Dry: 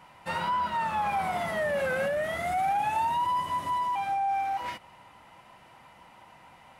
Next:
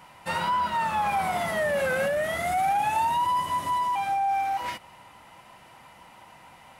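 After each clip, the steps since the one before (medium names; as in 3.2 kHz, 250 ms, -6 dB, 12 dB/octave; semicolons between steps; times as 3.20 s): treble shelf 5.2 kHz +6.5 dB; trim +2.5 dB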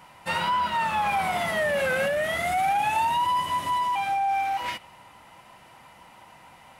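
dynamic bell 2.8 kHz, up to +5 dB, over -45 dBFS, Q 1.1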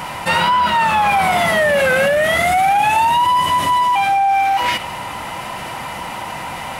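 level flattener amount 50%; trim +9 dB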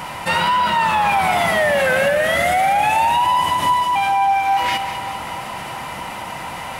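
two-band feedback delay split 1.3 kHz, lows 310 ms, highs 195 ms, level -10 dB; trim -2.5 dB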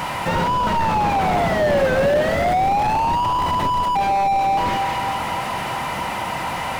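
slew-rate limiter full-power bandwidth 69 Hz; trim +4.5 dB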